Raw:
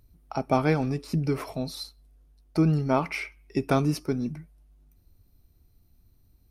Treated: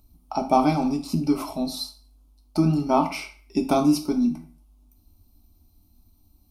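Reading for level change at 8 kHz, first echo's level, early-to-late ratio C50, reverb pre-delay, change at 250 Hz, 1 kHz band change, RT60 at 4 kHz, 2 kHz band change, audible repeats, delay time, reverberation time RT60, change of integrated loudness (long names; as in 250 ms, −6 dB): +6.0 dB, no echo audible, 11.5 dB, 3 ms, +5.5 dB, +6.5 dB, 0.35 s, −3.5 dB, no echo audible, no echo audible, 0.45 s, +3.5 dB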